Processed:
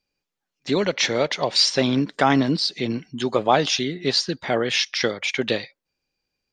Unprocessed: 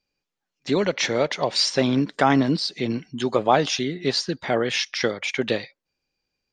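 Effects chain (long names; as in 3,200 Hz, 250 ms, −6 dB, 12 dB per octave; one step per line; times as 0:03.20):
dynamic equaliser 3,900 Hz, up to +4 dB, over −35 dBFS, Q 0.89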